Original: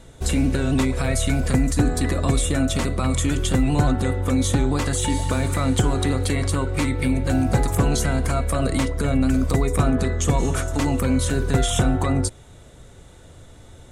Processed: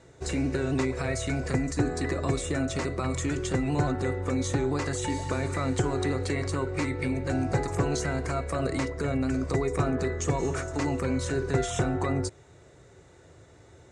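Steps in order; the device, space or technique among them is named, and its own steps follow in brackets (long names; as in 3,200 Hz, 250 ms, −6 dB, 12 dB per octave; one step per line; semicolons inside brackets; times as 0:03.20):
car door speaker (loudspeaker in its box 90–7,500 Hz, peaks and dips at 220 Hz −9 dB, 380 Hz +6 dB, 1,900 Hz +3 dB, 3,300 Hz −9 dB)
level −5.5 dB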